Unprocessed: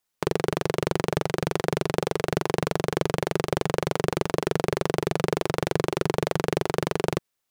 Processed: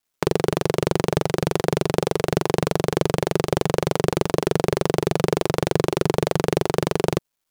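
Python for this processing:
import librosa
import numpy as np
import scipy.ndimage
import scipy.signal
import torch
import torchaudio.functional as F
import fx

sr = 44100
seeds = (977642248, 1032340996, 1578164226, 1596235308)

y = fx.quant_dither(x, sr, seeds[0], bits=12, dither='none')
y = fx.dynamic_eq(y, sr, hz=1700.0, q=0.77, threshold_db=-39.0, ratio=4.0, max_db=-4)
y = F.gain(torch.from_numpy(y), 5.0).numpy()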